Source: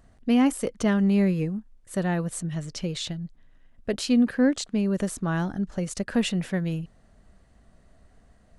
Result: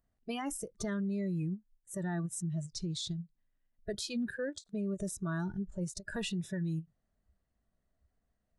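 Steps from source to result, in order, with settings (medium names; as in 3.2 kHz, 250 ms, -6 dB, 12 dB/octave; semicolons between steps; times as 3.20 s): spectral noise reduction 19 dB; peak limiter -24.5 dBFS, peak gain reduction 9.5 dB; endings held to a fixed fall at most 390 dB/s; trim -4 dB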